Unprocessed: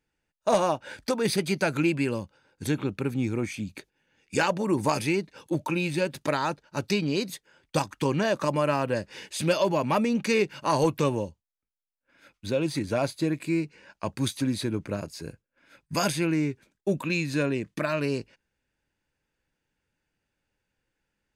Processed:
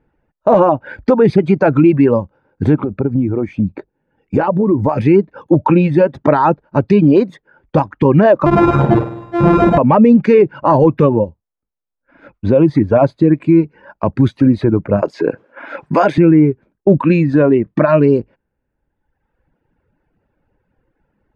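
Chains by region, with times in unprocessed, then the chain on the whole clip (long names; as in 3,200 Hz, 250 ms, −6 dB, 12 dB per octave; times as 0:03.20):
0:02.84–0:04.98: low-pass filter 7,600 Hz + parametric band 3,100 Hz −6 dB 2.8 octaves + downward compressor 4 to 1, threshold −29 dBFS
0:08.46–0:09.78: samples sorted by size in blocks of 128 samples + flutter between parallel walls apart 8.6 metres, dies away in 0.95 s
0:15.02–0:16.18: high-pass filter 370 Hz + parametric band 9,400 Hz −4 dB 0.24 octaves + envelope flattener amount 50%
whole clip: reverb reduction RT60 1.2 s; low-pass filter 1,000 Hz 12 dB per octave; boost into a limiter +21.5 dB; level −1 dB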